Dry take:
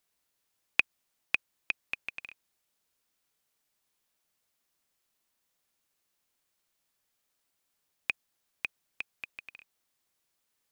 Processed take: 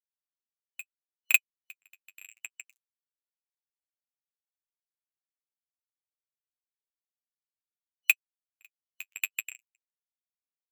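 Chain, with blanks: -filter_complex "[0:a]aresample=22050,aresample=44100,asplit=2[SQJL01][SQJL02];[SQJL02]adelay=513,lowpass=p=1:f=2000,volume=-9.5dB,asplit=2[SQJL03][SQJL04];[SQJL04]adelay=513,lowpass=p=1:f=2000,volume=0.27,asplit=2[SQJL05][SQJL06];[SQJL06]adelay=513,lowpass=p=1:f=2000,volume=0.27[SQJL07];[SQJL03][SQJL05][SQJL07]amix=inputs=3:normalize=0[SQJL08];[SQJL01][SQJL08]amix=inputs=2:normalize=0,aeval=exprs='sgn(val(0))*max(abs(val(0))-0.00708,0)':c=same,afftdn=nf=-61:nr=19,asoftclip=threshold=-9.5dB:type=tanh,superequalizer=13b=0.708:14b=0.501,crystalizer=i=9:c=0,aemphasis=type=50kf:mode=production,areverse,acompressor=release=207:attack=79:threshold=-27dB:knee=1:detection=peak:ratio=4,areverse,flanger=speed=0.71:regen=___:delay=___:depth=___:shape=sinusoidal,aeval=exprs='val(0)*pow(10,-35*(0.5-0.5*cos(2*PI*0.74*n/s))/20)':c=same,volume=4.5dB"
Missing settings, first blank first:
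28, 7.9, 2.4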